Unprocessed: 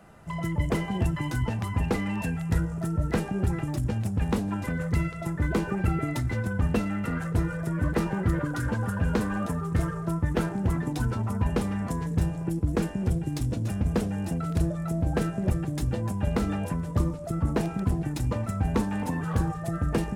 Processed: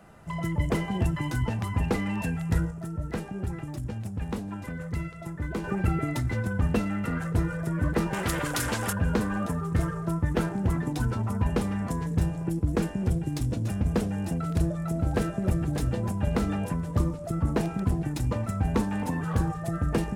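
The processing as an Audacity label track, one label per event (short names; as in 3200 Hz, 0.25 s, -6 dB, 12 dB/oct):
2.710000	5.640000	gain -6 dB
8.130000	8.930000	spectral compressor 2:1
14.360000	15.510000	echo throw 0.59 s, feedback 35%, level -9 dB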